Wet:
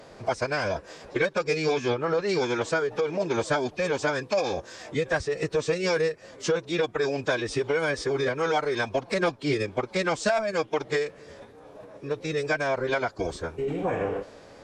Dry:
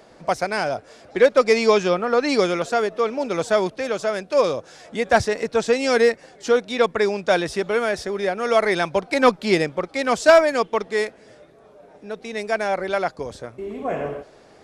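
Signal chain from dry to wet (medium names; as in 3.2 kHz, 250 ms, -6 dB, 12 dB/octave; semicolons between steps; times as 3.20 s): compression 6:1, threshold -25 dBFS, peak gain reduction 15.5 dB; formant-preserving pitch shift -6.5 st; trim +3 dB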